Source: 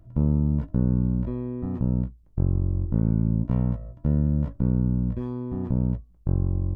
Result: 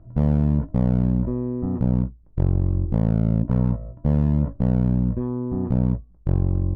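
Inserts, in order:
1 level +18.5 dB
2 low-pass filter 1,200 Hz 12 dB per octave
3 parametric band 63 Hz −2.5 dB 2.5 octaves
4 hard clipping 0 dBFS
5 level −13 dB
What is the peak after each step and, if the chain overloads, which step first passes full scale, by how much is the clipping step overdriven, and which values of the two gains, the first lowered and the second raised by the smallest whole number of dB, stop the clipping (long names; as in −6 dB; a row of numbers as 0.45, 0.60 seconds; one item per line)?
+6.0, +6.0, +5.0, 0.0, −13.0 dBFS
step 1, 5.0 dB
step 1 +13.5 dB, step 5 −8 dB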